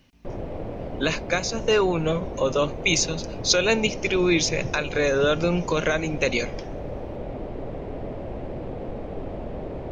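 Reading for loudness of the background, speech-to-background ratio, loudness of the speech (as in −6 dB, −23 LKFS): −34.5 LKFS, 11.0 dB, −23.5 LKFS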